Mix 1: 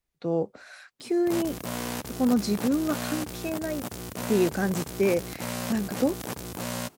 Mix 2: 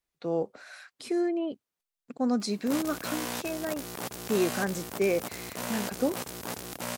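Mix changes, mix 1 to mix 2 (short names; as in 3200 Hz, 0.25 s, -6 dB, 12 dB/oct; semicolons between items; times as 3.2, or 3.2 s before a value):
background: entry +1.40 s; master: add low shelf 240 Hz -9.5 dB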